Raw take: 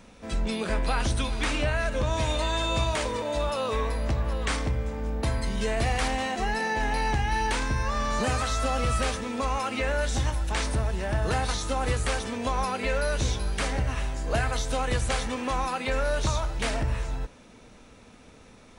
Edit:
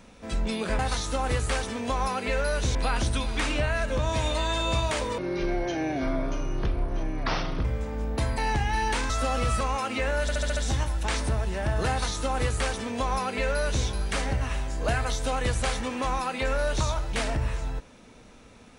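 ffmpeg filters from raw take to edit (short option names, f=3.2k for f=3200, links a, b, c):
-filter_complex "[0:a]asplit=13[a][b][c][d][e][f][g][h][i][j][k][l][m];[a]atrim=end=0.792[n];[b]atrim=start=11.358:end=13.322[o];[c]atrim=start=0.788:end=3.224[p];[d]atrim=start=3.22:end=4.7,asetpts=PTS-STARTPTS,asetrate=26460,aresample=44100[q];[e]atrim=start=4.696:end=5.432[r];[f]atrim=start=6.958:end=7.682[s];[g]atrim=start=8.508:end=9.022[t];[h]atrim=start=9.418:end=10.102[u];[i]atrim=start=10.028:end=10.102[v];[j]atrim=start=10.028:end=10.102[w];[k]atrim=start=10.028:end=10.102[x];[l]atrim=start=10.028:end=10.102[y];[m]atrim=start=10.028[z];[n][o]acrossfade=d=0.004:c1=hsin:c2=hsin[aa];[aa][p]acrossfade=d=0.004:c1=hsin:c2=hsin[ab];[ab][q]acrossfade=d=0.004:c1=hsin:c2=hsin[ac];[ac][r]acrossfade=d=0.004:c1=hsin:c2=hsin[ad];[ad][s]acrossfade=d=0.004:c1=hsin:c2=hsin[ae];[ae][t]acrossfade=d=0.004:c1=hsin:c2=hsin[af];[af][u]acrossfade=d=0.004:c1=hsin:c2=hsin[ag];[ag][v]acrossfade=d=0.004:c1=hsin:c2=hsin[ah];[ah][w]acrossfade=d=0.004:c1=hsin:c2=hsin[ai];[ai][x]acrossfade=d=0.004:c1=hsin:c2=hsin[aj];[aj][y]acrossfade=d=0.004:c1=hsin:c2=hsin[ak];[ak][z]acrossfade=d=0.004:c1=hsin:c2=hsin"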